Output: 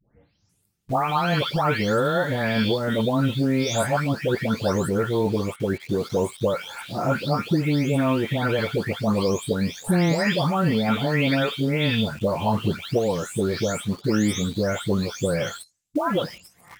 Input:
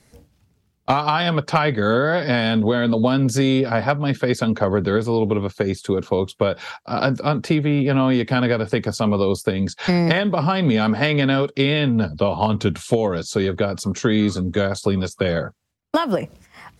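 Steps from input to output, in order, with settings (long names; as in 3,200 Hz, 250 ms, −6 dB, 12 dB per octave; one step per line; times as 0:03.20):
every frequency bin delayed by itself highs late, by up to 496 ms
dynamic equaliser 8,300 Hz, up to +4 dB, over −49 dBFS, Q 0.92
in parallel at −3.5 dB: bit-depth reduction 6 bits, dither none
on the sum: level −6.5 dB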